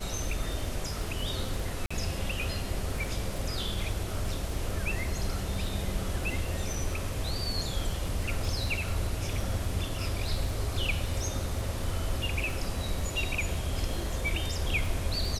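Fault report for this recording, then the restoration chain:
crackle 21/s -35 dBFS
1.86–1.91 gap 45 ms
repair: de-click; interpolate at 1.86, 45 ms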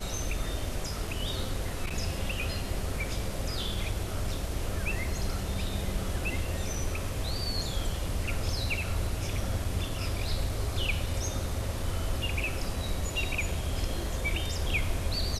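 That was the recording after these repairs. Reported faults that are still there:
none

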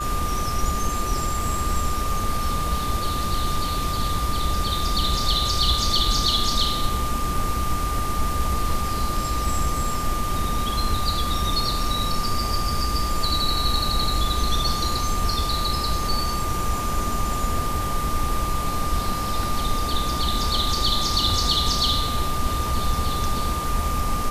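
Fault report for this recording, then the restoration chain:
tone 1200 Hz -27 dBFS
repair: notch 1200 Hz, Q 30

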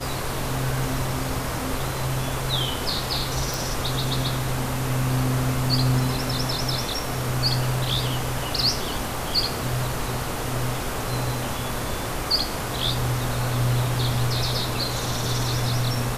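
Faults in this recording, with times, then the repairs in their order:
3.54 pop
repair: de-click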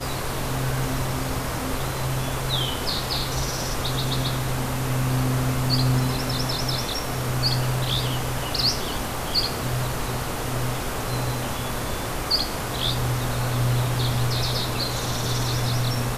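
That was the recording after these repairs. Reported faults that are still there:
none

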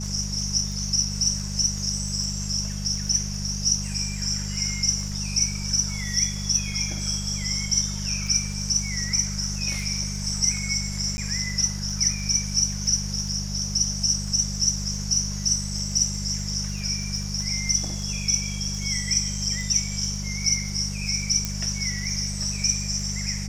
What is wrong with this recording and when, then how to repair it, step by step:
crackle 22/s -32 dBFS
hum 50 Hz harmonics 4 -31 dBFS
11.17–11.18 gap 10 ms
21.45 pop -11 dBFS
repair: de-click; de-hum 50 Hz, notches 4; interpolate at 11.17, 10 ms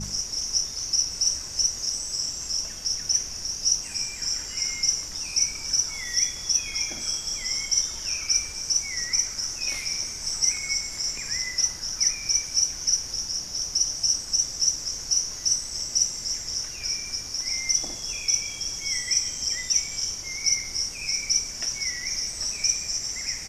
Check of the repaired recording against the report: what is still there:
none

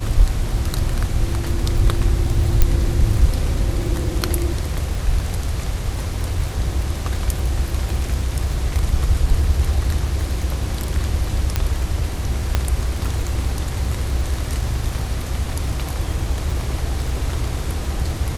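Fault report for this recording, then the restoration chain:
crackle 25/s -25 dBFS
2.62 pop -1 dBFS
11.56 pop -4 dBFS
12.55 pop -4 dBFS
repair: de-click

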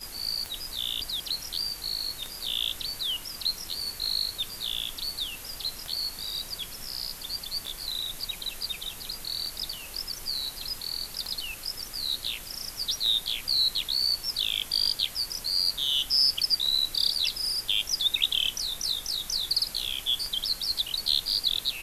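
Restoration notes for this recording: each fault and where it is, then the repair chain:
tick 33 1/3 rpm -20 dBFS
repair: de-click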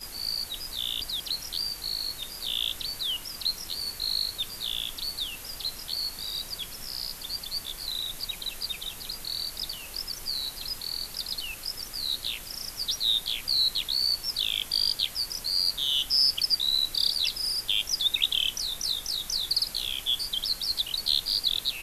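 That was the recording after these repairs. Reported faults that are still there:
none

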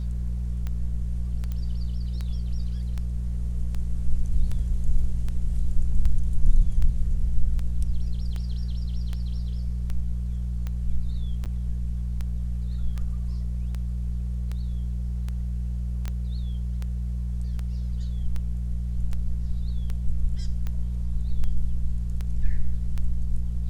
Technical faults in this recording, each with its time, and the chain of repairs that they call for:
hum 60 Hz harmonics 3 -28 dBFS
tick 78 rpm -20 dBFS
1.52 pop -21 dBFS
11.45–11.46 gap 7.8 ms
16.08 pop -17 dBFS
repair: de-click; de-hum 60 Hz, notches 3; interpolate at 11.45, 7.8 ms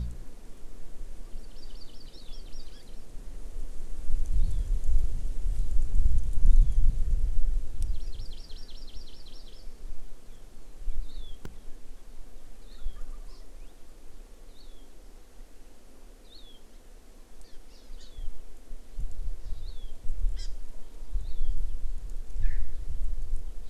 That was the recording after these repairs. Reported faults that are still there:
none

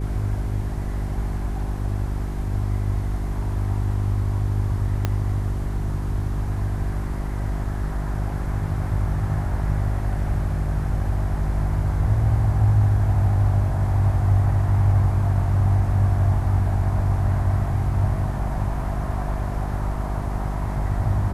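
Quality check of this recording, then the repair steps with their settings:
hum 50 Hz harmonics 8 -26 dBFS
5.05 pop -9 dBFS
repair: de-click; de-hum 50 Hz, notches 8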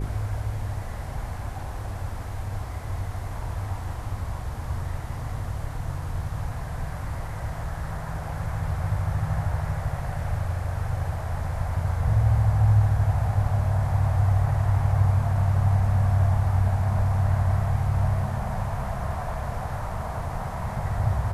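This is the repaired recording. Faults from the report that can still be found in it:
5.05 pop

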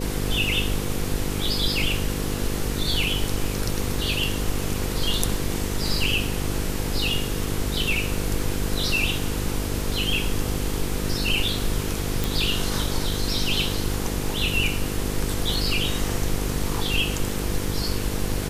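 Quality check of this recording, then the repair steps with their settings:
buzz 50 Hz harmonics 10 -29 dBFS
12.24 pop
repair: de-click; de-hum 50 Hz, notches 10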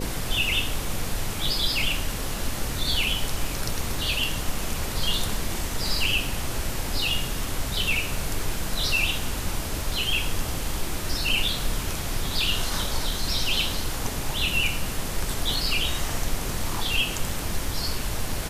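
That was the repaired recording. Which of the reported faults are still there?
none

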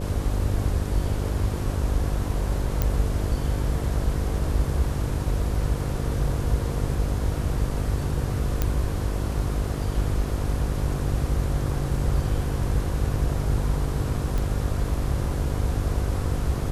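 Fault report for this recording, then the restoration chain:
buzz 50 Hz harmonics 11 -29 dBFS
2.82 pop -9 dBFS
8.62 pop -9 dBFS
14.38 pop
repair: de-click; de-hum 50 Hz, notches 11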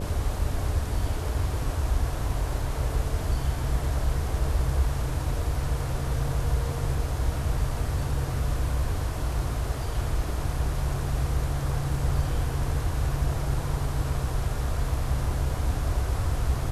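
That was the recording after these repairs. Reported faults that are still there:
none

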